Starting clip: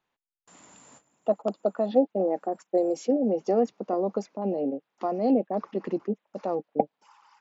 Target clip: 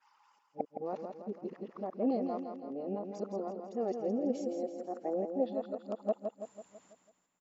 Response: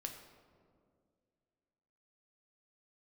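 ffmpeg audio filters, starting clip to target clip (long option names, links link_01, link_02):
-filter_complex "[0:a]areverse,tremolo=f=0.97:d=0.47,asplit=2[link_01][link_02];[link_02]aecho=0:1:165|330|495|660|825|990:0.473|0.246|0.128|0.0665|0.0346|0.018[link_03];[link_01][link_03]amix=inputs=2:normalize=0,volume=-8.5dB"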